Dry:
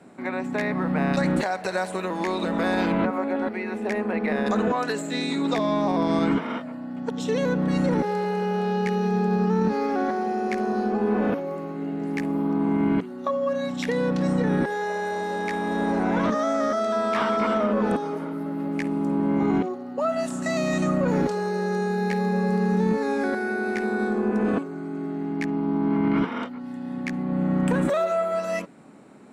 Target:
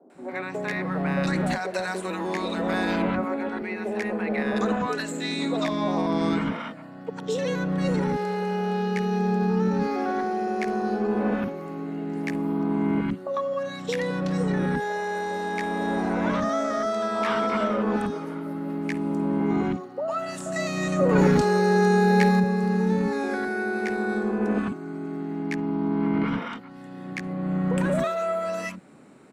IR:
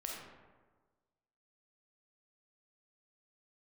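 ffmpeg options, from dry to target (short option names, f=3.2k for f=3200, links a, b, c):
-filter_complex "[0:a]asettb=1/sr,asplit=3[a][b][c];[a]atrim=end=20.994[d];[b]atrim=start=20.99:end=22.3,asetpts=PTS-STARTPTS,afade=t=in:d=0.004:c=qsin,afade=t=out:st=1.306:d=0.004:c=qsin,acontrast=89[e];[c]atrim=start=22.296[f];[d][e]acrossfade=d=0.004:c1=hsin:c2=qsin[g];[g][f]acrossfade=d=0.004:c1=qsin:c2=hsin,acrossover=split=260|790[h][i][j];[j]adelay=100[k];[h]adelay=140[l];[l][i][k]amix=inputs=3:normalize=0"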